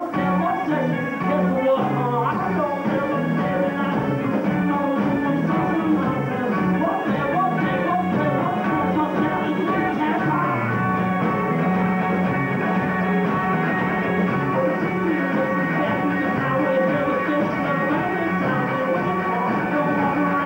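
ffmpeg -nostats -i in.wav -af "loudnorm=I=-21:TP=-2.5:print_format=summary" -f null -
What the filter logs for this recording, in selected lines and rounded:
Input Integrated:    -21.2 LUFS
Input True Peak:      -9.2 dBTP
Input LRA:             0.5 LU
Input Threshold:     -31.2 LUFS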